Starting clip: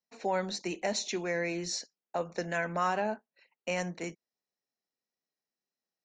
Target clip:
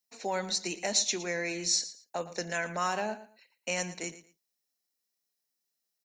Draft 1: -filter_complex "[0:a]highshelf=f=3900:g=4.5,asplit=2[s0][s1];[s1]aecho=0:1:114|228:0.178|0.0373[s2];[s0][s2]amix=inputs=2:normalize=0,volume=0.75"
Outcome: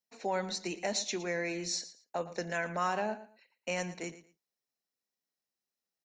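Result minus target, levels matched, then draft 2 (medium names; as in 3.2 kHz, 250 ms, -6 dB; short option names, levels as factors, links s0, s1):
8 kHz band -4.5 dB
-filter_complex "[0:a]highshelf=f=3900:g=16,asplit=2[s0][s1];[s1]aecho=0:1:114|228:0.178|0.0373[s2];[s0][s2]amix=inputs=2:normalize=0,volume=0.75"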